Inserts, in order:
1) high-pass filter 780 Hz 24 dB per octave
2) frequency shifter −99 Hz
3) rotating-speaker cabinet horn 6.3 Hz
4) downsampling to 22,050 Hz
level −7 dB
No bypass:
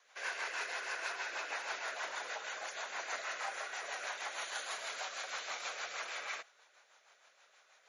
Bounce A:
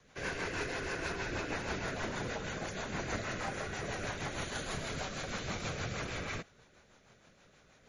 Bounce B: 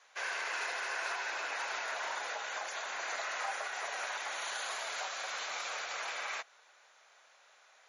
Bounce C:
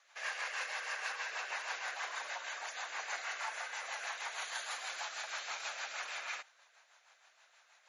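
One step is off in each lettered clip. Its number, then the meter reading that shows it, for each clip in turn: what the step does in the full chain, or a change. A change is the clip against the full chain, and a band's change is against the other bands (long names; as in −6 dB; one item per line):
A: 1, change in crest factor −2.0 dB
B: 3, change in integrated loudness +3.0 LU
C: 2, 500 Hz band −4.0 dB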